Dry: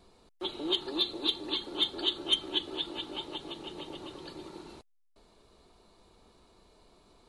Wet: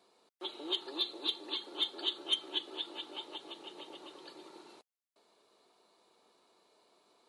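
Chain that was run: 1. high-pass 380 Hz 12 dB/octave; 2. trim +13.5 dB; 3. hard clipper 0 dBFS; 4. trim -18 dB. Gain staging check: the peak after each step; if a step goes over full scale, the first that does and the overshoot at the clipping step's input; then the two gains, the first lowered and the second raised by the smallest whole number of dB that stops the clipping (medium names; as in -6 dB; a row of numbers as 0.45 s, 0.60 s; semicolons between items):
-15.5 dBFS, -2.0 dBFS, -2.0 dBFS, -20.0 dBFS; nothing clips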